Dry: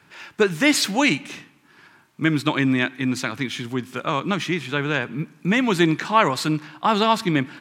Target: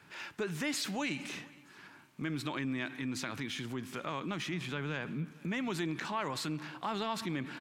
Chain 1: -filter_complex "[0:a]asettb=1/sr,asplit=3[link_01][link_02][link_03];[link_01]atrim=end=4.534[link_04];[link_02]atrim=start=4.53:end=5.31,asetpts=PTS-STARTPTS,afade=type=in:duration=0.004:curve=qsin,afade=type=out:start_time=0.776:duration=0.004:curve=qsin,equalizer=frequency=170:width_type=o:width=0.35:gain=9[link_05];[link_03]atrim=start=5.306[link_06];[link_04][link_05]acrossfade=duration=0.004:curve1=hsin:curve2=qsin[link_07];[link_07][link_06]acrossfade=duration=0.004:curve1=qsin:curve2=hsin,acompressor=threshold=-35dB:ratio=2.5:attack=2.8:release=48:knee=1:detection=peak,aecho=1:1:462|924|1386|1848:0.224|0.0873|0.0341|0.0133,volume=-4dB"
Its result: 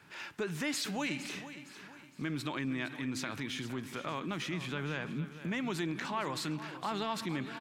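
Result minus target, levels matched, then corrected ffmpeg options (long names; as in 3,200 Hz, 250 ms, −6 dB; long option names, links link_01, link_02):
echo-to-direct +11 dB
-filter_complex "[0:a]asettb=1/sr,asplit=3[link_01][link_02][link_03];[link_01]atrim=end=4.534[link_04];[link_02]atrim=start=4.53:end=5.31,asetpts=PTS-STARTPTS,afade=type=in:duration=0.004:curve=qsin,afade=type=out:start_time=0.776:duration=0.004:curve=qsin,equalizer=frequency=170:width_type=o:width=0.35:gain=9[link_05];[link_03]atrim=start=5.306[link_06];[link_04][link_05]acrossfade=duration=0.004:curve1=hsin:curve2=qsin[link_07];[link_07][link_06]acrossfade=duration=0.004:curve1=qsin:curve2=hsin,acompressor=threshold=-35dB:ratio=2.5:attack=2.8:release=48:knee=1:detection=peak,aecho=1:1:462|924:0.0631|0.0246,volume=-4dB"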